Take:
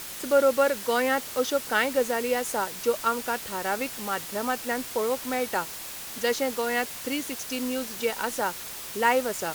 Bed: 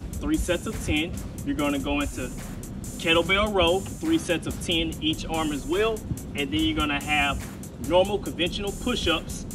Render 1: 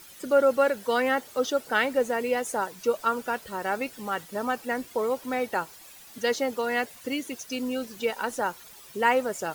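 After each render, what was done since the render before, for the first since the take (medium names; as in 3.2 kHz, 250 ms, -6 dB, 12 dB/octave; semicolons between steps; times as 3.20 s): noise reduction 13 dB, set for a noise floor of -38 dBFS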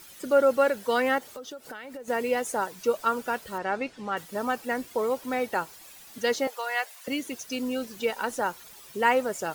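1.18–2.08 s: compression 16:1, threshold -36 dBFS; 3.58–4.17 s: distance through air 100 m; 6.47–7.08 s: high-pass 620 Hz 24 dB/octave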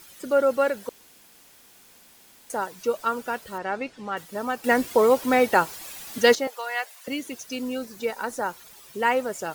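0.89–2.50 s: room tone; 4.64–6.35 s: gain +9 dB; 7.78–8.49 s: peaking EQ 3 kHz -7 dB 0.44 oct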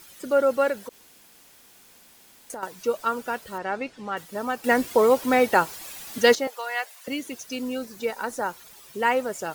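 0.73–2.63 s: compression, threshold -32 dBFS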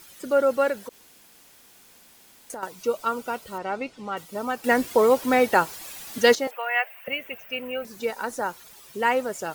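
2.69–4.51 s: band-stop 1.7 kHz, Q 5.4; 6.51–7.85 s: FFT filter 180 Hz 0 dB, 300 Hz -14 dB, 440 Hz -1 dB, 620 Hz +6 dB, 1 kHz 0 dB, 2.7 kHz +8 dB, 3.9 kHz -17 dB, 10 kHz -22 dB, 16 kHz +7 dB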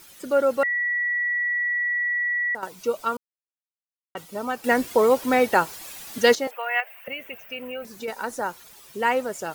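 0.63–2.55 s: bleep 1.94 kHz -21.5 dBFS; 3.17–4.15 s: mute; 6.80–8.08 s: compression 2:1, threshold -31 dBFS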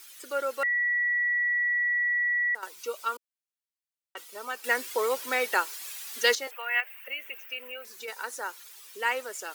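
high-pass 430 Hz 24 dB/octave; peaking EQ 660 Hz -12.5 dB 1.3 oct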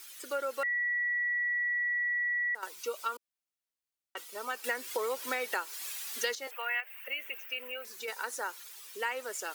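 compression 5:1, threshold -30 dBFS, peak gain reduction 12 dB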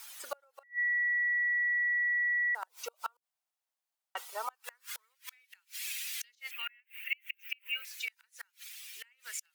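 inverted gate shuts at -26 dBFS, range -34 dB; high-pass sweep 750 Hz -> 2.3 kHz, 4.37–5.34 s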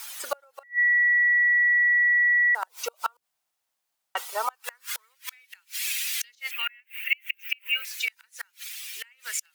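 trim +9.5 dB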